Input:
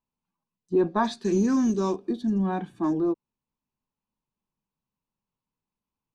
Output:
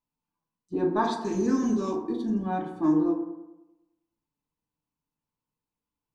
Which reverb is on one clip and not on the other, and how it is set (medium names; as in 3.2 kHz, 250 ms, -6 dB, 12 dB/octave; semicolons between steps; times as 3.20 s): FDN reverb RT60 0.97 s, low-frequency decay 1×, high-frequency decay 0.35×, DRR 0 dB; trim -4 dB